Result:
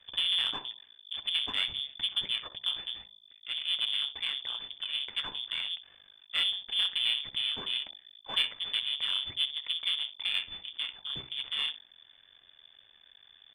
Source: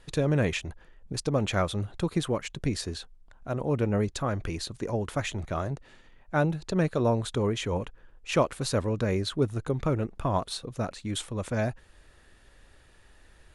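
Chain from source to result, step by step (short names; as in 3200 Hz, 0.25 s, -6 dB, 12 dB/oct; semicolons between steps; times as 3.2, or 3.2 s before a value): frequency shift +36 Hz; on a send: early reflections 10 ms -13 dB, 63 ms -16 dB; on the sum: half-wave rectifier; inverted band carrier 3500 Hz; de-hum 63.61 Hz, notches 16; in parallel at -5.5 dB: soft clip -24 dBFS, distortion -9 dB; on the sum: gain -5.5 dB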